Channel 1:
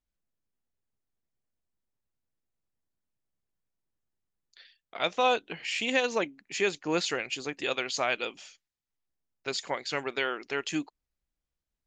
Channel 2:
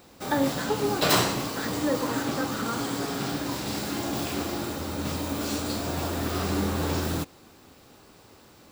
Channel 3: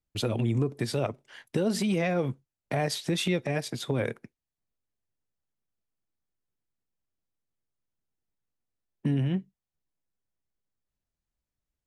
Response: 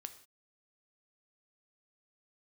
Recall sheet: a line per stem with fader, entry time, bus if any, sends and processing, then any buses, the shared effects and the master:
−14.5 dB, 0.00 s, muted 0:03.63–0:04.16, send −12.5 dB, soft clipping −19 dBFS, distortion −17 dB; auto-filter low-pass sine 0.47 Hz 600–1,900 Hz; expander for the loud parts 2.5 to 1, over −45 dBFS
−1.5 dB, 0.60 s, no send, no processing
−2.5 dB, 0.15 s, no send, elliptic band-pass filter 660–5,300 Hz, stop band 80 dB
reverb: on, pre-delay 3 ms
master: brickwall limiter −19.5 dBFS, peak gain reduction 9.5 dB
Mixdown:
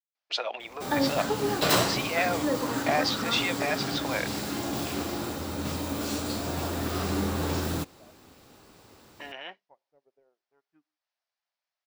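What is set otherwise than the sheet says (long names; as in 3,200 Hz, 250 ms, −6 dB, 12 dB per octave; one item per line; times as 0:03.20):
stem 1 −14.5 dB → −25.0 dB
stem 3 −2.5 dB → +6.0 dB
master: missing brickwall limiter −19.5 dBFS, peak gain reduction 9.5 dB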